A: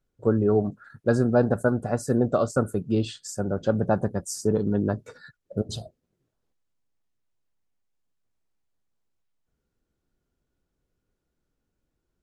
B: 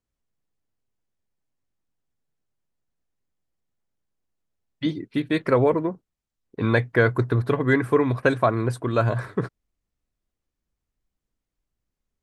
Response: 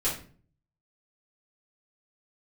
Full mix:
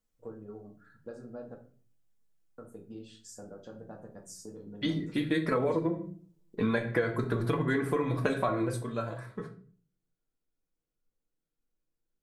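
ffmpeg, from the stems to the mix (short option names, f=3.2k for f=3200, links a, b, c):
-filter_complex "[0:a]acompressor=threshold=-29dB:ratio=8,lowshelf=f=120:g=-11,volume=-17.5dB,asplit=3[a][b][c];[a]atrim=end=1.55,asetpts=PTS-STARTPTS,afade=t=out:st=1.546:d=0.004:c=hsin[d];[b]atrim=start=1.55:end=2.58,asetpts=PTS-STARTPTS,volume=0[e];[c]atrim=start=2.58,asetpts=PTS-STARTPTS,afade=t=in:d=0.004:c=hsin[f];[d][e][f]concat=n=3:v=0:a=1,asplit=2[g][h];[h]volume=-5dB[i];[1:a]highshelf=f=6.1k:g=8,flanger=delay=4.6:depth=1.5:regen=28:speed=1.8:shape=sinusoidal,volume=-2dB,afade=t=out:st=8.53:d=0.39:silence=0.251189,asplit=2[j][k];[k]volume=-8.5dB[l];[2:a]atrim=start_sample=2205[m];[i][l]amix=inputs=2:normalize=0[n];[n][m]afir=irnorm=-1:irlink=0[o];[g][j][o]amix=inputs=3:normalize=0,acompressor=threshold=-25dB:ratio=6"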